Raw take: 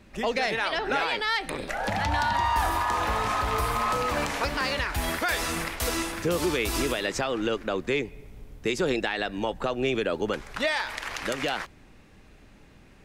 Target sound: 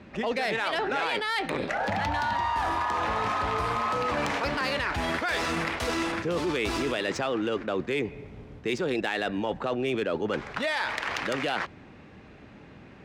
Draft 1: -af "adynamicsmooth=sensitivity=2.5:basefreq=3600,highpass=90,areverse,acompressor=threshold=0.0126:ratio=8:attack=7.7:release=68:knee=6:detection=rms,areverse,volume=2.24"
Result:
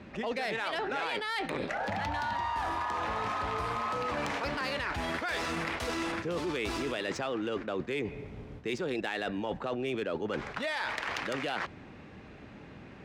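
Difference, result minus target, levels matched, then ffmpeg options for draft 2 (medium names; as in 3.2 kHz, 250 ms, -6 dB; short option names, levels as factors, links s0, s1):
compression: peak gain reduction +5 dB
-af "adynamicsmooth=sensitivity=2.5:basefreq=3600,highpass=90,areverse,acompressor=threshold=0.0251:ratio=8:attack=7.7:release=68:knee=6:detection=rms,areverse,volume=2.24"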